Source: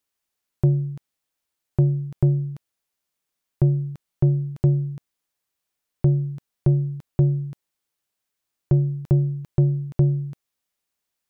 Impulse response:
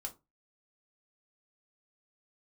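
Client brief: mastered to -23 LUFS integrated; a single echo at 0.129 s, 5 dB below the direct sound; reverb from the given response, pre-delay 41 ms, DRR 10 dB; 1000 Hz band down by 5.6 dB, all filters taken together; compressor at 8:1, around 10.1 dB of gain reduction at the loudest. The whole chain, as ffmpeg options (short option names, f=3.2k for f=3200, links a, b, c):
-filter_complex "[0:a]equalizer=f=1k:t=o:g=-9,acompressor=threshold=-24dB:ratio=8,aecho=1:1:129:0.562,asplit=2[a][b];[1:a]atrim=start_sample=2205,adelay=41[c];[b][c]afir=irnorm=-1:irlink=0,volume=-8dB[d];[a][d]amix=inputs=2:normalize=0,volume=7.5dB"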